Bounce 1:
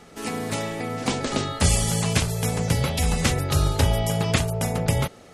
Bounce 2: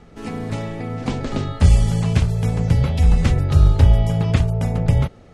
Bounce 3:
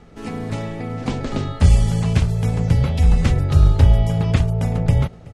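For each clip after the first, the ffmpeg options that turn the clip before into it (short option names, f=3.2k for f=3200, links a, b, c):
-af "aemphasis=mode=reproduction:type=bsi,volume=-2.5dB"
-af "aecho=1:1:377:0.075"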